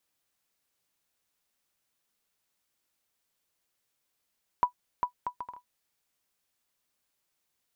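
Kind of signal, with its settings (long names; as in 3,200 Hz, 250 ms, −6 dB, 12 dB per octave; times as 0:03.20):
bouncing ball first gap 0.40 s, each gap 0.59, 984 Hz, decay 100 ms −13.5 dBFS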